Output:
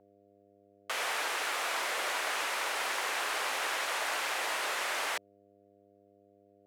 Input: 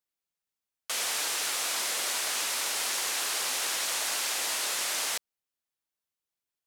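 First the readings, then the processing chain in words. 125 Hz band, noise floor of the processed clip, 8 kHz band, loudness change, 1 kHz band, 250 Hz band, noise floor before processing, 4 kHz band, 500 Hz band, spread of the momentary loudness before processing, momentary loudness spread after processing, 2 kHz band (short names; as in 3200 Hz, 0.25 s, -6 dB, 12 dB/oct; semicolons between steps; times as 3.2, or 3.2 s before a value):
n/a, -64 dBFS, -10.5 dB, -4.0 dB, +3.5 dB, -0.5 dB, under -85 dBFS, -5.5 dB, +3.0 dB, 2 LU, 2 LU, +2.0 dB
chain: buzz 100 Hz, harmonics 7, -58 dBFS -6 dB/oct; three-band isolator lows -23 dB, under 300 Hz, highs -15 dB, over 2600 Hz; gain +4 dB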